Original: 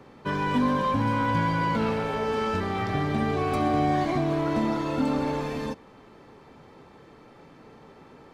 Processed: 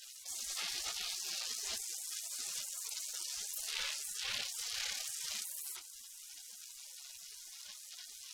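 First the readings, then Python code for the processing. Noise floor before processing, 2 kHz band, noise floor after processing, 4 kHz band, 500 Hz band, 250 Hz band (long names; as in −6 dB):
−52 dBFS, −13.0 dB, −53 dBFS, +2.0 dB, −34.0 dB, below −40 dB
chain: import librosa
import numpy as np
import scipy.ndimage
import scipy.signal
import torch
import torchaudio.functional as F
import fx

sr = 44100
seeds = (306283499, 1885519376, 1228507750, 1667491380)

p1 = fx.rider(x, sr, range_db=5, speed_s=2.0)
p2 = x + (p1 * librosa.db_to_amplitude(2.0))
p3 = 10.0 ** (-9.5 / 20.0) * np.tanh(p2 / 10.0 ** (-9.5 / 20.0))
p4 = fx.doubler(p3, sr, ms=37.0, db=-12.5)
p5 = fx.dynamic_eq(p4, sr, hz=670.0, q=1.7, threshold_db=-37.0, ratio=4.0, max_db=-6)
p6 = scipy.signal.sosfilt(scipy.signal.butter(2, 90.0, 'highpass', fs=sr, output='sos'), p5)
p7 = fx.high_shelf(p6, sr, hz=3300.0, db=5.0)
p8 = fx.chorus_voices(p7, sr, voices=6, hz=0.48, base_ms=23, depth_ms=1.8, mix_pct=65)
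p9 = fx.echo_thinned(p8, sr, ms=90, feedback_pct=30, hz=680.0, wet_db=-23.0)
p10 = fx.cheby_harmonics(p9, sr, harmonics=(2, 3, 7, 8), levels_db=(-14, -30, -19, -21), full_scale_db=-8.5)
p11 = fx.spec_gate(p10, sr, threshold_db=-30, keep='weak')
y = fx.env_flatten(p11, sr, amount_pct=70)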